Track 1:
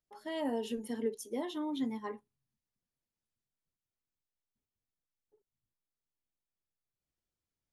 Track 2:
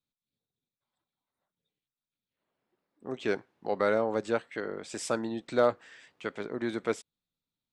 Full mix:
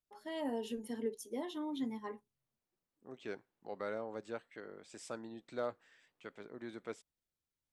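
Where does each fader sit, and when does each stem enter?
-3.5, -14.0 dB; 0.00, 0.00 s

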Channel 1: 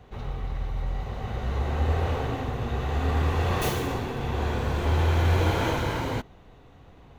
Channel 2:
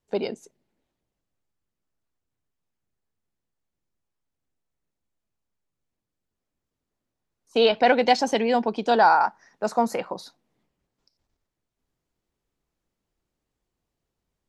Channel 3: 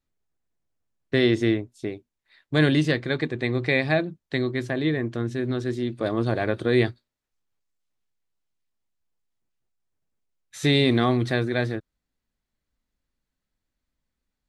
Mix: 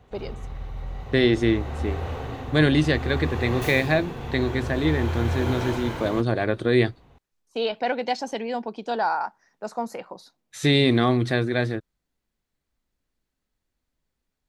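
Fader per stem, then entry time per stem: -4.0, -7.0, +1.0 dB; 0.00, 0.00, 0.00 s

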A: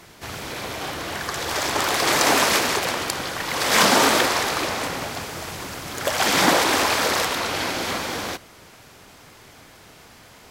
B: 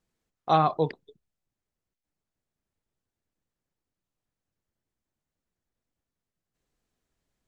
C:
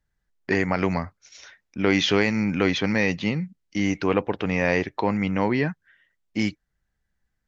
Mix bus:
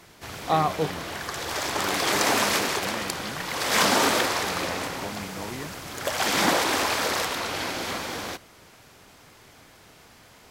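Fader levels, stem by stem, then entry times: -4.5, -1.0, -15.0 dB; 0.00, 0.00, 0.00 s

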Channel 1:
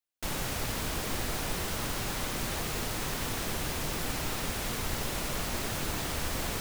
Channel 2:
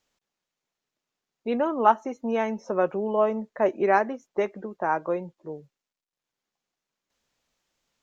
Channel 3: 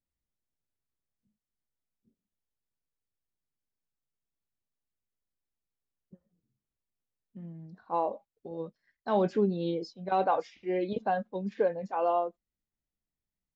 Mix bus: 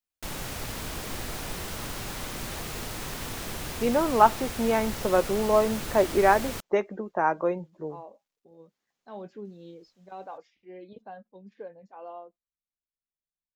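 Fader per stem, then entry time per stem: -2.0, +1.0, -14.5 dB; 0.00, 2.35, 0.00 s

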